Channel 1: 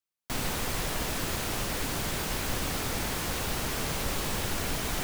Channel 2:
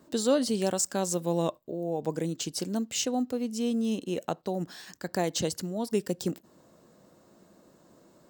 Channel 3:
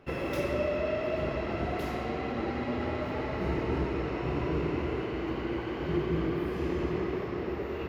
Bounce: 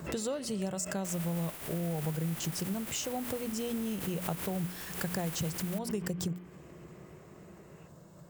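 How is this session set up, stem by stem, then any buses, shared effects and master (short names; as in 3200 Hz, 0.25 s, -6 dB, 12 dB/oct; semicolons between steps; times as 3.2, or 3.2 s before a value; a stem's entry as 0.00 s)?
-13.5 dB, 0.75 s, no send, spectral contrast lowered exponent 0.17; bell 6100 Hz -6.5 dB 0.89 oct
+2.0 dB, 0.00 s, no send, resonant low shelf 200 Hz +7 dB, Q 3; notches 60/120/180/240 Hz; compressor 6:1, threshold -34 dBFS, peak gain reduction 14.5 dB
-10.5 dB, 0.00 s, no send, tilt shelf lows -3 dB; auto duck -11 dB, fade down 0.25 s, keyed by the second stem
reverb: off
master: bell 4200 Hz -5 dB 0.68 oct; backwards sustainer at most 93 dB/s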